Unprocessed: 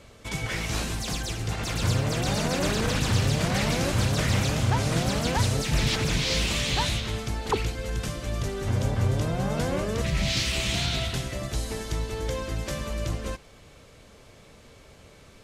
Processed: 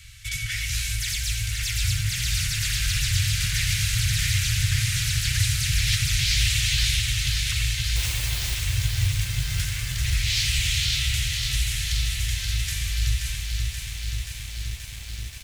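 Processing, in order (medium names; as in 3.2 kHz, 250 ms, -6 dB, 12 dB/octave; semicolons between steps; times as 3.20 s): inverse Chebyshev band-stop 230–870 Hz, stop band 50 dB; treble shelf 11 kHz +9.5 dB; in parallel at +2.5 dB: compression 10:1, threshold -38 dBFS, peak gain reduction 18 dB; 7.96–8.55 s: on the sum: word length cut 6-bit, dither triangular; on a send: delay 87 ms -11 dB; on the sum: bit-crushed delay 529 ms, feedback 80%, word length 8-bit, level -5 dB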